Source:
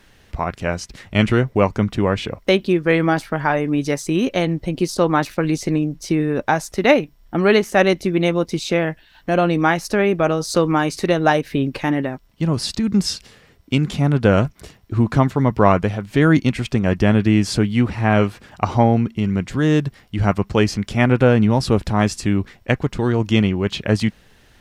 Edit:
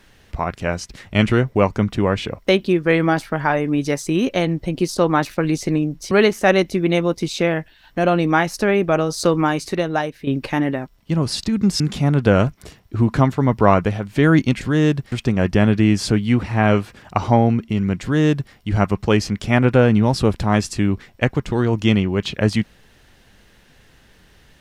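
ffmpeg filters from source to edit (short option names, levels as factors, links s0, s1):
-filter_complex "[0:a]asplit=6[s0][s1][s2][s3][s4][s5];[s0]atrim=end=6.112[s6];[s1]atrim=start=7.418:end=11.58,asetpts=PTS-STARTPTS,afade=t=out:st=3.292:d=0.87:silence=0.281838[s7];[s2]atrim=start=11.58:end=13.112,asetpts=PTS-STARTPTS,afade=t=in:d=0.004:c=hsin:silence=0.281838[s8];[s3]atrim=start=13.778:end=16.592[s9];[s4]atrim=start=19.488:end=20.002[s10];[s5]atrim=start=16.588[s11];[s7][s8]concat=n=2:v=0:a=1[s12];[s6][s12]acrossfade=d=0.004:c1=hsin:c2=hsin[s13];[s13][s9]acrossfade=d=0.004:c1=hsin:c2=hsin[s14];[s14][s10]acrossfade=d=0.004:c1=hsin:c2=hsin[s15];[s15][s11]acrossfade=d=0.004:c1=hsin:c2=hsin"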